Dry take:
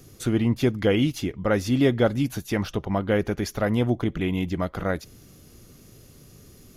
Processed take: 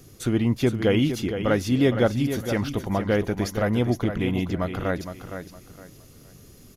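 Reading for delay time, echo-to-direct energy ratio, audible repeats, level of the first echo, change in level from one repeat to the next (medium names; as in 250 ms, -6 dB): 463 ms, -8.5 dB, 3, -9.0 dB, -11.5 dB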